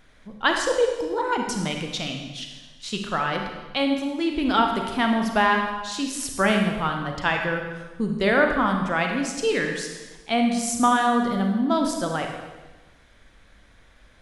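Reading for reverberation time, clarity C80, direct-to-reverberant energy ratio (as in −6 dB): 1.2 s, 6.0 dB, 2.5 dB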